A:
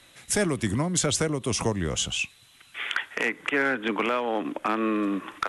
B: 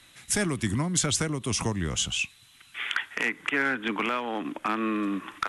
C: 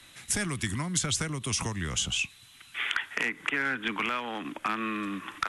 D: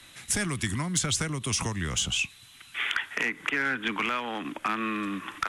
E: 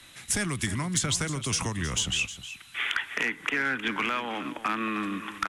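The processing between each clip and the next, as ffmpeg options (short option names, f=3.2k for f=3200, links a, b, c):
-af "equalizer=f=530:w=1.3:g=-7.5"
-filter_complex "[0:a]acrossover=split=160|1100[a][b][c];[a]acompressor=threshold=-36dB:ratio=4[d];[b]acompressor=threshold=-40dB:ratio=4[e];[c]acompressor=threshold=-28dB:ratio=4[f];[d][e][f]amix=inputs=3:normalize=0,volume=2dB"
-af "asoftclip=type=tanh:threshold=-15.5dB,volume=2dB"
-af "aecho=1:1:312:0.224"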